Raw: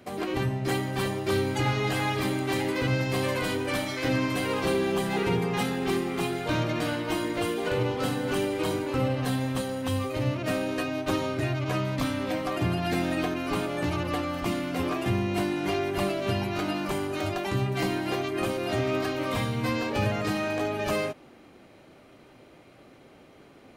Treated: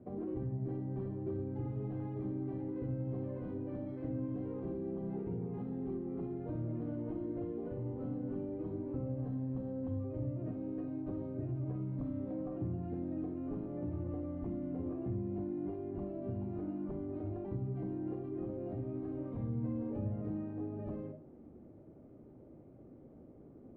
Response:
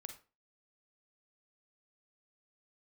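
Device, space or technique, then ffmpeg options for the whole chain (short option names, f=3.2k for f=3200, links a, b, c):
television next door: -filter_complex "[0:a]acompressor=threshold=-34dB:ratio=6,lowpass=380[a];[1:a]atrim=start_sample=2205[b];[a][b]afir=irnorm=-1:irlink=0,volume=5.5dB"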